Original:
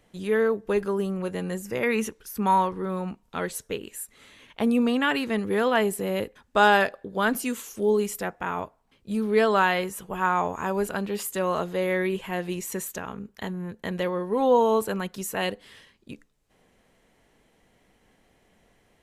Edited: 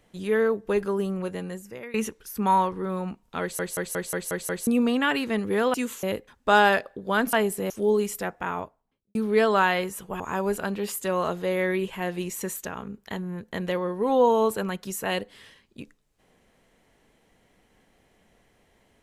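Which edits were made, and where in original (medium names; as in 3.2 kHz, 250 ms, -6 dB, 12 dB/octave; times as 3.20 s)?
1.18–1.94 s: fade out, to -21.5 dB
3.41 s: stutter in place 0.18 s, 7 plays
5.74–6.11 s: swap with 7.41–7.70 s
8.45–9.15 s: studio fade out
10.20–10.51 s: delete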